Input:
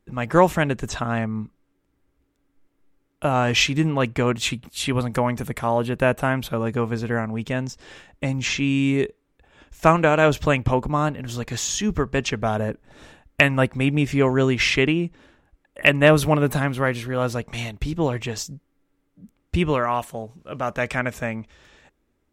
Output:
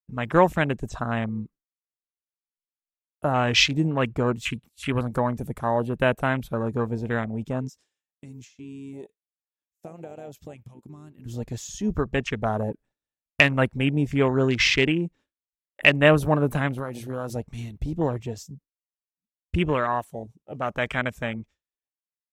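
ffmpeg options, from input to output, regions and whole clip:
ffmpeg -i in.wav -filter_complex "[0:a]asettb=1/sr,asplit=3[link_01][link_02][link_03];[link_01]atrim=end=7.684[link_04];[link_02]atrim=start=7.68:end=11.26,asetpts=PTS-STARTPTS,afade=type=in:duration=0.004:curve=qsin,afade=type=out:start_time=3.576:duration=0.004:curve=qsin,highshelf=frequency=5600:gain=11,acompressor=threshold=-33dB:ratio=4:attack=3.2:release=140:knee=1:detection=peak,highpass=frequency=170:poles=1[link_05];[link_03]atrim=start=11.256[link_06];[link_04][link_05]acrossfade=duration=0.004:curve1=hsin:curve2=qsin[link_07];[link_07][link_06]acrossfade=duration=0.004:curve1=qsin:curve2=hsin,asettb=1/sr,asplit=3[link_08][link_09][link_10];[link_08]atrim=end=16.784[link_11];[link_09]atrim=start=16.78:end=17.36,asetpts=PTS-STARTPTS,afade=type=in:duration=0.004:curve=qsin,afade=type=out:start_time=0.576:duration=0.004:curve=qsin,highshelf=frequency=3800:gain=8.5,bandreject=frequency=60:width_type=h:width=6,bandreject=frequency=120:width_type=h:width=6,bandreject=frequency=180:width_type=h:width=6,acompressor=threshold=-22dB:ratio=12:attack=3.2:release=140:knee=1:detection=peak[link_12];[link_10]atrim=start=17.356[link_13];[link_11][link_12]acrossfade=duration=0.004:curve1=hsin:curve2=qsin[link_14];[link_14][link_13]acrossfade=duration=0.004:curve1=qsin:curve2=hsin,afwtdn=0.0398,agate=range=-33dB:threshold=-40dB:ratio=3:detection=peak,highshelf=frequency=4300:gain=10,volume=-2.5dB" out.wav

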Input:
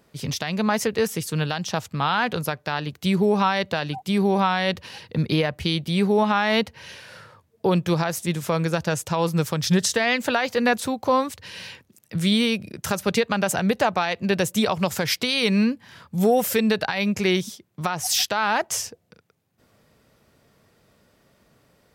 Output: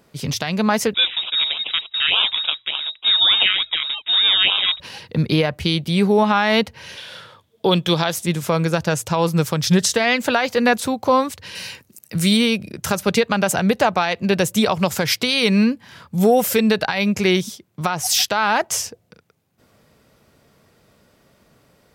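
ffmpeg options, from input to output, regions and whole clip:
ffmpeg -i in.wav -filter_complex "[0:a]asettb=1/sr,asplit=3[link_01][link_02][link_03];[link_01]atrim=end=0.944[link_04];[link_02]atrim=start=0.94:end=4.8,asetpts=PTS-STARTPTS,afade=type=in:duration=0.004:curve=qsin,afade=type=out:start_time=3.856:duration=0.004:curve=qsin,acrusher=samples=18:mix=1:aa=0.000001:lfo=1:lforange=10.8:lforate=3.4,lowpass=frequency=3300:width_type=q:width=0.5098,lowpass=frequency=3300:width_type=q:width=0.6013,lowpass=frequency=3300:width_type=q:width=0.9,lowpass=frequency=3300:width_type=q:width=2.563,afreqshift=-3900[link_05];[link_03]atrim=start=4.796[link_06];[link_04][link_05]acrossfade=duration=0.004:curve1=hsin:curve2=qsin[link_07];[link_07][link_06]acrossfade=duration=0.004:curve1=qsin:curve2=hsin,asettb=1/sr,asplit=3[link_08][link_09][link_10];[link_08]atrim=end=6.974[link_11];[link_09]atrim=start=6.97:end=8.15,asetpts=PTS-STARTPTS,afade=type=in:duration=0.004:curve=qsin,afade=type=out:start_time=1.176:duration=0.004:curve=qsin,highpass=frequency=150:poles=1,equalizer=frequency=3400:width=4.1:gain=14.5,deesser=0.5[link_12];[link_10]atrim=start=8.146[link_13];[link_11][link_12]acrossfade=duration=0.004:curve1=hsin:curve2=qsin[link_14];[link_14][link_13]acrossfade=duration=0.004:curve1=qsin:curve2=hsin,asettb=1/sr,asplit=3[link_15][link_16][link_17];[link_15]atrim=end=11.554[link_18];[link_16]atrim=start=11.55:end=12.37,asetpts=PTS-STARTPTS,afade=type=in:duration=0.004:curve=qsin,afade=type=out:start_time=0.816:duration=0.004:curve=qsin,aemphasis=mode=production:type=cd,bandreject=frequency=3400:width=9.9[link_19];[link_17]atrim=start=12.366[link_20];[link_18][link_19]acrossfade=duration=0.004:curve1=hsin:curve2=qsin[link_21];[link_21][link_20]acrossfade=duration=0.004:curve1=qsin:curve2=hsin,bandreject=frequency=1800:width=30,bandreject=frequency=56.16:width_type=h:width=4,bandreject=frequency=112.32:width_type=h:width=4,volume=4dB" out.wav

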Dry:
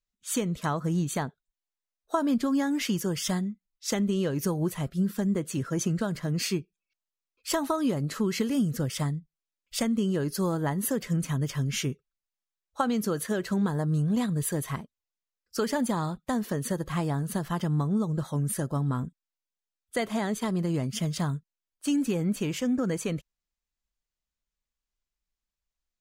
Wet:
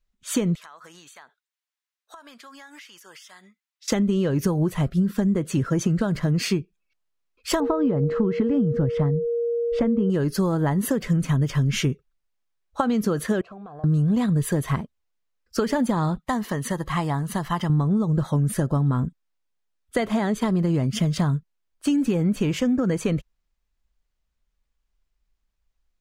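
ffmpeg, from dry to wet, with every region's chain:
ffmpeg -i in.wav -filter_complex "[0:a]asettb=1/sr,asplit=3[link_01][link_02][link_03];[link_01]atrim=end=0.554[link_04];[link_02]atrim=start=0.55:end=3.88,asetpts=PTS-STARTPTS,afade=type=in:duration=0.004:curve=qsin,afade=type=out:start_time=3.326:duration=0.004:curve=qsin,highpass=1300,acompressor=threshold=-49dB:ratio=8:attack=3.2:release=140:knee=1:detection=peak[link_05];[link_03]atrim=start=3.876[link_06];[link_04][link_05]acrossfade=duration=0.004:curve1=hsin:curve2=qsin[link_07];[link_07][link_06]acrossfade=duration=0.004:curve1=qsin:curve2=hsin,asettb=1/sr,asplit=3[link_08][link_09][link_10];[link_08]atrim=end=7.604[link_11];[link_09]atrim=start=7.6:end=10.1,asetpts=PTS-STARTPTS,afade=type=in:duration=0.004:curve=qsin,afade=type=out:start_time=2.496:duration=0.004:curve=qsin,lowpass=frequency=1500:poles=1,aeval=exprs='val(0)+0.0282*sin(2*PI*470*n/s)':channel_layout=same,aemphasis=mode=reproduction:type=75fm[link_12];[link_10]atrim=start=10.096[link_13];[link_11][link_12]acrossfade=duration=0.004:curve1=hsin:curve2=qsin[link_14];[link_14][link_13]acrossfade=duration=0.004:curve1=qsin:curve2=hsin,asettb=1/sr,asplit=3[link_15][link_16][link_17];[link_15]atrim=end=13.414[link_18];[link_16]atrim=start=13.41:end=13.84,asetpts=PTS-STARTPTS,afade=type=in:duration=0.004:curve=qsin,afade=type=out:start_time=0.426:duration=0.004:curve=qsin,asplit=3[link_19][link_20][link_21];[link_19]bandpass=frequency=730:width_type=q:width=8,volume=0dB[link_22];[link_20]bandpass=frequency=1090:width_type=q:width=8,volume=-6dB[link_23];[link_21]bandpass=frequency=2440:width_type=q:width=8,volume=-9dB[link_24];[link_22][link_23][link_24]amix=inputs=3:normalize=0,equalizer=frequency=75:width_type=o:width=2.5:gain=8.5,acompressor=threshold=-46dB:ratio=6:attack=3.2:release=140:knee=1:detection=peak[link_25];[link_17]atrim=start=13.836[link_26];[link_18][link_25]acrossfade=duration=0.004:curve1=hsin:curve2=qsin[link_27];[link_27][link_26]acrossfade=duration=0.004:curve1=qsin:curve2=hsin,asettb=1/sr,asplit=3[link_28][link_29][link_30];[link_28]atrim=end=16.214[link_31];[link_29]atrim=start=16.21:end=17.7,asetpts=PTS-STARTPTS,afade=type=in:duration=0.004:curve=qsin,afade=type=out:start_time=1.486:duration=0.004:curve=qsin,lowshelf=frequency=400:gain=-10.5,aecho=1:1:1:0.35,atrim=end_sample=65709[link_32];[link_30]atrim=start=17.696[link_33];[link_31][link_32]acrossfade=duration=0.004:curve1=hsin:curve2=qsin[link_34];[link_34][link_33]acrossfade=duration=0.004:curve1=qsin:curve2=hsin,highshelf=frequency=4600:gain=-10,acompressor=threshold=-28dB:ratio=6,lowshelf=frequency=77:gain=9,volume=9dB" out.wav

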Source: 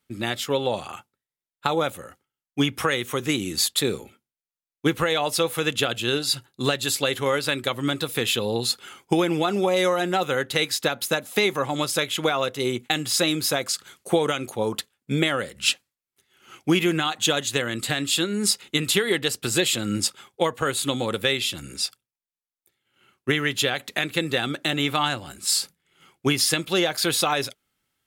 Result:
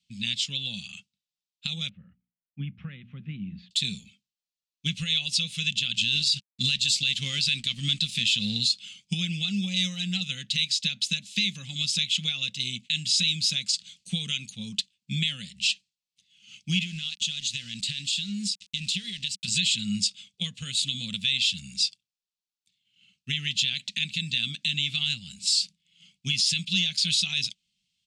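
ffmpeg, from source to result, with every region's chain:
ffmpeg -i in.wav -filter_complex "[0:a]asettb=1/sr,asplit=3[link_01][link_02][link_03];[link_01]atrim=end=1.894[link_04];[link_02]atrim=start=1.89:end=3.71,asetpts=PTS-STARTPTS,afade=type=in:duration=0.004:curve=qsin,afade=type=out:start_time=1.816:duration=0.004:curve=qsin,lowpass=frequency=1500:width=0.5412,lowpass=frequency=1500:width=1.3066,bandreject=frequency=60:width_type=h:width=6,bandreject=frequency=120:width_type=h:width=6,bandreject=frequency=180:width_type=h:width=6,bandreject=frequency=240:width_type=h:width=6[link_05];[link_03]atrim=start=3.706[link_06];[link_04][link_05]acrossfade=duration=0.004:curve1=hsin:curve2=qsin[link_07];[link_07][link_06]acrossfade=duration=0.004:curve1=qsin:curve2=hsin,asettb=1/sr,asplit=3[link_08][link_09][link_10];[link_08]atrim=end=5.944[link_11];[link_09]atrim=start=5.94:end=8.65,asetpts=PTS-STARTPTS,afade=type=in:duration=0.004:curve=qsin,afade=type=out:start_time=2.706:duration=0.004:curve=qsin,acontrast=52,aeval=exprs='sgn(val(0))*max(abs(val(0))-0.0119,0)':channel_layout=same[link_12];[link_10]atrim=start=8.646[link_13];[link_11][link_12]acrossfade=duration=0.004:curve1=hsin:curve2=qsin[link_14];[link_14][link_13]acrossfade=duration=0.004:curve1=qsin:curve2=hsin,asettb=1/sr,asplit=3[link_15][link_16][link_17];[link_15]atrim=end=16.814[link_18];[link_16]atrim=start=16.81:end=19.48,asetpts=PTS-STARTPTS,afade=type=in:duration=0.004:curve=qsin,afade=type=out:start_time=2.666:duration=0.004:curve=qsin,acompressor=threshold=-25dB:ratio=10:attack=3.2:release=140:knee=1:detection=peak,aeval=exprs='val(0)*gte(abs(val(0)),0.0106)':channel_layout=same[link_19];[link_17]atrim=start=19.476[link_20];[link_18][link_19]acrossfade=duration=0.004:curve1=hsin:curve2=qsin[link_21];[link_21][link_20]acrossfade=duration=0.004:curve1=qsin:curve2=hsin,firequalizer=gain_entry='entry(120,0);entry(190,11);entry(320,-25);entry(1000,-29);entry(2600,10);entry(4300,13);entry(8200,5);entry(13000,-25)':delay=0.05:min_phase=1,alimiter=limit=-6dB:level=0:latency=1:release=51,volume=-7.5dB" out.wav

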